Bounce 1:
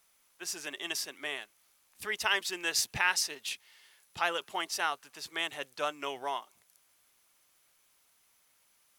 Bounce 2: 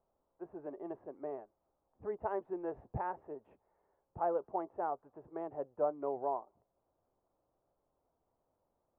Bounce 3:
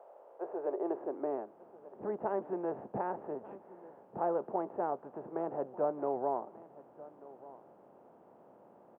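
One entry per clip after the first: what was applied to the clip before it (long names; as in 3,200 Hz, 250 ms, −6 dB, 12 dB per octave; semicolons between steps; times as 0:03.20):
inverse Chebyshev low-pass filter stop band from 4,300 Hz, stop band 80 dB; parametric band 200 Hz −4.5 dB 1.4 octaves; level +5 dB
compressor on every frequency bin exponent 0.6; high-pass filter sweep 570 Hz → 210 Hz, 0:00.12–0:01.69; single-tap delay 1,188 ms −18.5 dB; level −2 dB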